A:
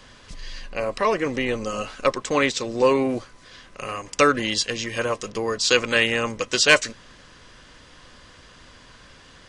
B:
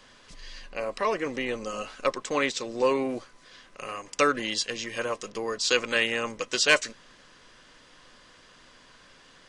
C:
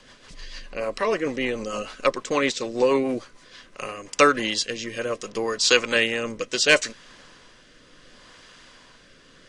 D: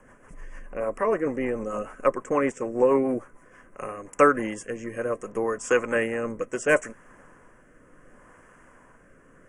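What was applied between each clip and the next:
bell 63 Hz -14 dB 1.8 oct; gain -5 dB
rotary speaker horn 6.7 Hz, later 0.7 Hz, at 3.3; gain +6.5 dB
Butterworth band-stop 4100 Hz, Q 0.53

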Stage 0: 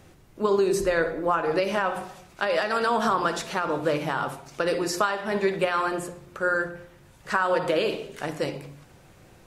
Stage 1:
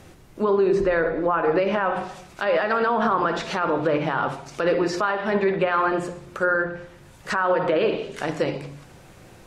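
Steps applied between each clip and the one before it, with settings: notches 50/100/150 Hz; treble ducked by the level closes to 2300 Hz, closed at -21.5 dBFS; limiter -17.5 dBFS, peak gain reduction 8 dB; gain +5.5 dB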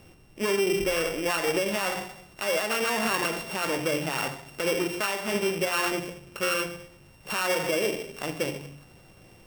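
sample sorter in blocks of 16 samples; gain -5.5 dB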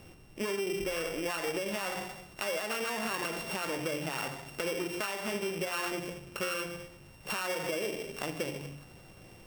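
compressor 4:1, threshold -32 dBFS, peak gain reduction 9 dB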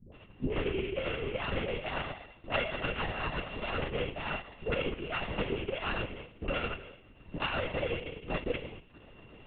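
dispersion highs, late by 0.135 s, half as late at 390 Hz; transient shaper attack +7 dB, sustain -10 dB; LPC vocoder at 8 kHz whisper

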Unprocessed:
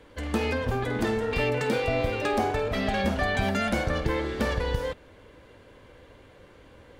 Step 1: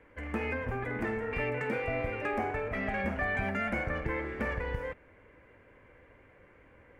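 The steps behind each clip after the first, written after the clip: resonant high shelf 2900 Hz -10 dB, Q 3; gain -7.5 dB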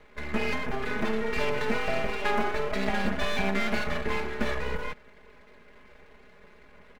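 half-wave rectifier; comb 4.8 ms, depth 85%; gain +6 dB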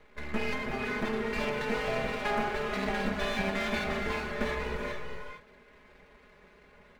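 non-linear reverb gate 0.49 s rising, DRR 4 dB; gain -3.5 dB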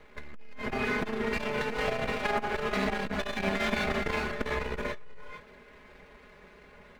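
core saturation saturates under 210 Hz; gain +4 dB

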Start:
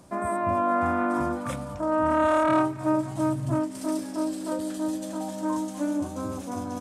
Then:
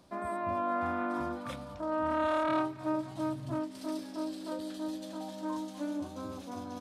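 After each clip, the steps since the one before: ten-band EQ 125 Hz -4 dB, 4000 Hz +9 dB, 8000 Hz -8 dB; gain -8 dB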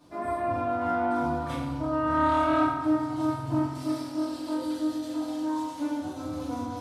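FDN reverb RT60 1.2 s, low-frequency decay 1.5×, high-frequency decay 0.6×, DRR -9.5 dB; gain -4 dB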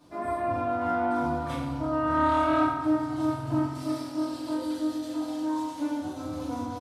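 echo 0.965 s -21.5 dB

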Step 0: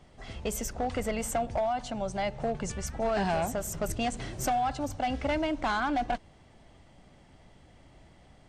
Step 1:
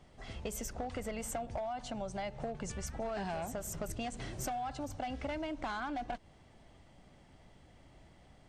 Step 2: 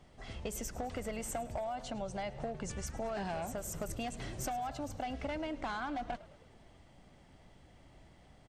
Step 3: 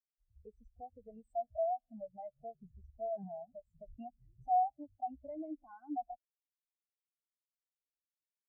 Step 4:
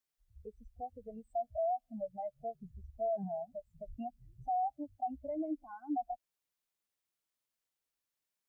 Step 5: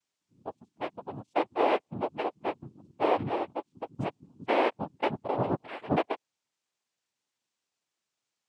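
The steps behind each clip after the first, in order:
compressor, threshold -32 dBFS, peak gain reduction 7 dB; gain -3.5 dB
frequency-shifting echo 0.106 s, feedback 59%, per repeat -70 Hz, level -18 dB
spectral expander 4:1; gain +4 dB
limiter -34.5 dBFS, peak gain reduction 11.5 dB; gain +6 dB
noise vocoder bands 4; gain +8 dB

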